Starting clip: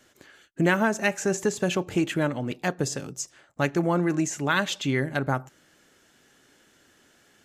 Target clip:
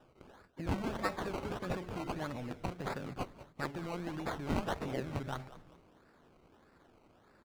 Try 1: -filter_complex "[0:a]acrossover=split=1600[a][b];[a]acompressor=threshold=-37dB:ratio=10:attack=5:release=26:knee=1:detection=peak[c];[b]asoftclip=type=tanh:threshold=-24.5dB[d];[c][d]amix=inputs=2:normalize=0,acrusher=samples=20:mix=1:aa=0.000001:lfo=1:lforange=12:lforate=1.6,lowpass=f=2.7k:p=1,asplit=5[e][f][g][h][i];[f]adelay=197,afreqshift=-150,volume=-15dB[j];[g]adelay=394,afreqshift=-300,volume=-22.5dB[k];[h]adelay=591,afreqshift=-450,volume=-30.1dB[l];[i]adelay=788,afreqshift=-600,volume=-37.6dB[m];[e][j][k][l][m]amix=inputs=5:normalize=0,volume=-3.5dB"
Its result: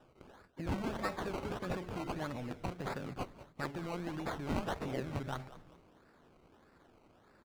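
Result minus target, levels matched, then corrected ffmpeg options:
soft clip: distortion +10 dB
-filter_complex "[0:a]acrossover=split=1600[a][b];[a]acompressor=threshold=-37dB:ratio=10:attack=5:release=26:knee=1:detection=peak[c];[b]asoftclip=type=tanh:threshold=-16.5dB[d];[c][d]amix=inputs=2:normalize=0,acrusher=samples=20:mix=1:aa=0.000001:lfo=1:lforange=12:lforate=1.6,lowpass=f=2.7k:p=1,asplit=5[e][f][g][h][i];[f]adelay=197,afreqshift=-150,volume=-15dB[j];[g]adelay=394,afreqshift=-300,volume=-22.5dB[k];[h]adelay=591,afreqshift=-450,volume=-30.1dB[l];[i]adelay=788,afreqshift=-600,volume=-37.6dB[m];[e][j][k][l][m]amix=inputs=5:normalize=0,volume=-3.5dB"

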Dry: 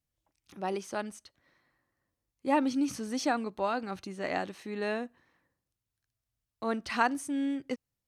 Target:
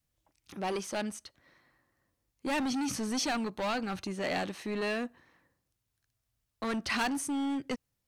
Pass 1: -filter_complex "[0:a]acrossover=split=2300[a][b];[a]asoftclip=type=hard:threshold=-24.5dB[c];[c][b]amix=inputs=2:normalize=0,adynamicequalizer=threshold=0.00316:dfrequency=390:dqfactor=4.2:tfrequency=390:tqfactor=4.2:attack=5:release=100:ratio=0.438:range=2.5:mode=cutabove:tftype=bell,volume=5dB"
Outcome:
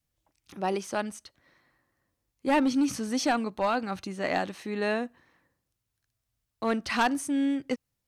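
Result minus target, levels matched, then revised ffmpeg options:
hard clip: distortion -9 dB
-filter_complex "[0:a]acrossover=split=2300[a][b];[a]asoftclip=type=hard:threshold=-35dB[c];[c][b]amix=inputs=2:normalize=0,adynamicequalizer=threshold=0.00316:dfrequency=390:dqfactor=4.2:tfrequency=390:tqfactor=4.2:attack=5:release=100:ratio=0.438:range=2.5:mode=cutabove:tftype=bell,volume=5dB"

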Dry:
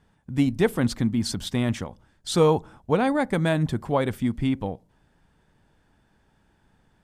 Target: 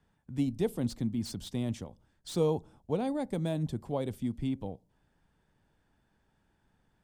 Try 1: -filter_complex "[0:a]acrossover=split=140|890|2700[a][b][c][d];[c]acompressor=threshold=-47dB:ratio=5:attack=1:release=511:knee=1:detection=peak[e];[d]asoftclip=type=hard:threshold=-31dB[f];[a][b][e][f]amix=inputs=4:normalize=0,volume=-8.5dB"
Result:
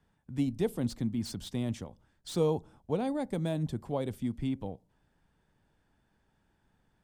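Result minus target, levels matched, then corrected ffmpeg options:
compressor: peak gain reduction -5.5 dB
-filter_complex "[0:a]acrossover=split=140|890|2700[a][b][c][d];[c]acompressor=threshold=-54dB:ratio=5:attack=1:release=511:knee=1:detection=peak[e];[d]asoftclip=type=hard:threshold=-31dB[f];[a][b][e][f]amix=inputs=4:normalize=0,volume=-8.5dB"

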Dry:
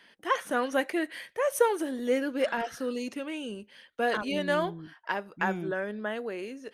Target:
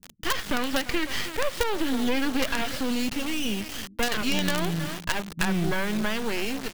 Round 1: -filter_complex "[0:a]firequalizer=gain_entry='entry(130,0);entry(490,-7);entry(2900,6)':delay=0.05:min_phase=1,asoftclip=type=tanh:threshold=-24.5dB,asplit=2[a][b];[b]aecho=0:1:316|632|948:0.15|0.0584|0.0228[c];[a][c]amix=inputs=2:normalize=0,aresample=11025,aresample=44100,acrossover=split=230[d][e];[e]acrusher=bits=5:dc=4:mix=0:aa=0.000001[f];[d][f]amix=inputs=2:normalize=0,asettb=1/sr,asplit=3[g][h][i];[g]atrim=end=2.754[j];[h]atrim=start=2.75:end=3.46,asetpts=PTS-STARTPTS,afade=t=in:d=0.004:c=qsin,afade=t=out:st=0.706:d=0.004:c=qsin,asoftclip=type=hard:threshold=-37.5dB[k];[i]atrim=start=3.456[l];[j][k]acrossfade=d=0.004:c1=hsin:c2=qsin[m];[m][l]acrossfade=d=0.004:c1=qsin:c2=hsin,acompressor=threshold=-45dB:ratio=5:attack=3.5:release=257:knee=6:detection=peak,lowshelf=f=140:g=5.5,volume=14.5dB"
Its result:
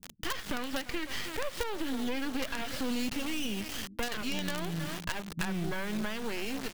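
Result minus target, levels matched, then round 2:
compressor: peak gain reduction +9 dB
-filter_complex "[0:a]firequalizer=gain_entry='entry(130,0);entry(490,-7);entry(2900,6)':delay=0.05:min_phase=1,asoftclip=type=tanh:threshold=-24.5dB,asplit=2[a][b];[b]aecho=0:1:316|632|948:0.15|0.0584|0.0228[c];[a][c]amix=inputs=2:normalize=0,aresample=11025,aresample=44100,acrossover=split=230[d][e];[e]acrusher=bits=5:dc=4:mix=0:aa=0.000001[f];[d][f]amix=inputs=2:normalize=0,asettb=1/sr,asplit=3[g][h][i];[g]atrim=end=2.754[j];[h]atrim=start=2.75:end=3.46,asetpts=PTS-STARTPTS,afade=t=in:d=0.004:c=qsin,afade=t=out:st=0.706:d=0.004:c=qsin,asoftclip=type=hard:threshold=-37.5dB[k];[i]atrim=start=3.456[l];[j][k]acrossfade=d=0.004:c1=hsin:c2=qsin[m];[m][l]acrossfade=d=0.004:c1=qsin:c2=hsin,acompressor=threshold=-34dB:ratio=5:attack=3.5:release=257:knee=6:detection=peak,lowshelf=f=140:g=5.5,volume=14.5dB"

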